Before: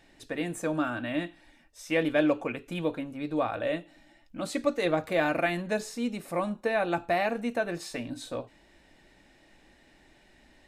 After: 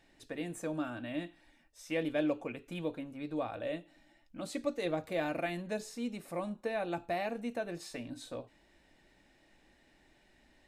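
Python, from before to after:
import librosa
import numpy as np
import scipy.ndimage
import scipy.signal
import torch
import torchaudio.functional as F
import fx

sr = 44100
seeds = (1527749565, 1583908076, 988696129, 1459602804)

y = fx.dynamic_eq(x, sr, hz=1400.0, q=1.0, threshold_db=-42.0, ratio=4.0, max_db=-5)
y = y * librosa.db_to_amplitude(-6.5)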